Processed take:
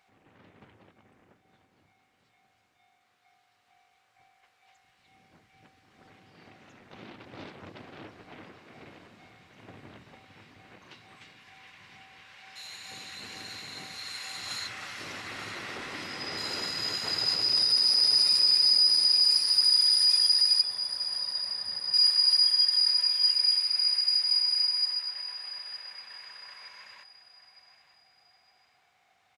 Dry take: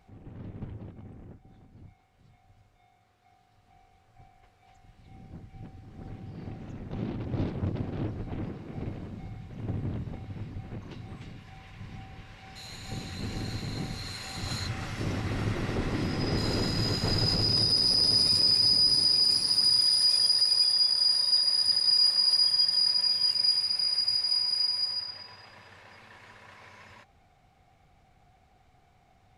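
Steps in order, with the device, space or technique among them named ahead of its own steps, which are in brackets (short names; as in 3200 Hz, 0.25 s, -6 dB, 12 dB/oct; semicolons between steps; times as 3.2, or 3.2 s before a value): 20.61–21.94 tilt -4.5 dB/oct; filter by subtraction (in parallel: LPF 1900 Hz 12 dB/oct + phase invert); on the sum: feedback echo 0.913 s, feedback 38%, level -14 dB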